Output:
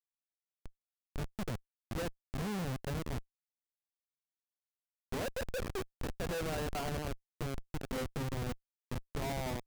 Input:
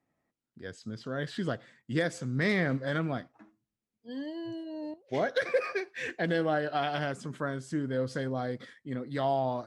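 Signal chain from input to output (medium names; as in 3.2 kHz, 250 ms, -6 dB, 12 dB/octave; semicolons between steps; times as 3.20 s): spectral replace 1.01–1.30 s, 510–1300 Hz; cabinet simulation 190–4400 Hz, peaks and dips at 210 Hz +7 dB, 300 Hz -5 dB, 450 Hz +3 dB, 650 Hz -3 dB, 950 Hz +4 dB, 2.1 kHz -6 dB; Schmitt trigger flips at -30 dBFS; trim -2 dB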